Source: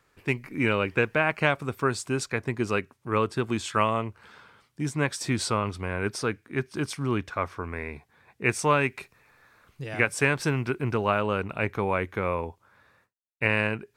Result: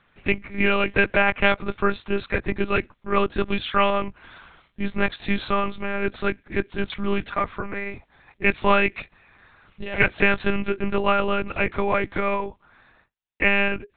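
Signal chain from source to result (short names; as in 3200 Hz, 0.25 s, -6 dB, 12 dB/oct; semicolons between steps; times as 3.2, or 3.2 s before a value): de-esser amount 55%; high shelf 2900 Hz +6.5 dB; monotone LPC vocoder at 8 kHz 200 Hz; gain +4 dB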